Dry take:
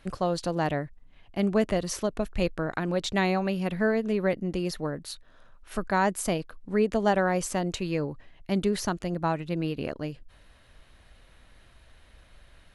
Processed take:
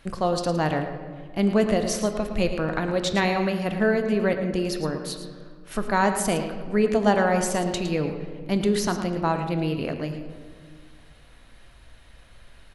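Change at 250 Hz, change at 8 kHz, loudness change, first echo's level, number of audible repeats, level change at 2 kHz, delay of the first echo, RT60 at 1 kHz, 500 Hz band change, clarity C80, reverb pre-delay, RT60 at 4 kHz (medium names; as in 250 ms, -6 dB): +4.0 dB, +4.5 dB, +3.5 dB, -11.0 dB, 1, +4.0 dB, 111 ms, 1.7 s, +4.0 dB, 7.5 dB, 4 ms, 1.0 s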